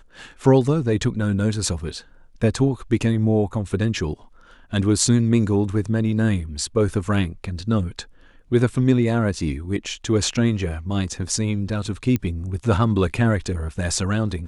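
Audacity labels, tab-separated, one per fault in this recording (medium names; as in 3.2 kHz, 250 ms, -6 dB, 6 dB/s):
12.160000	12.160000	pop -11 dBFS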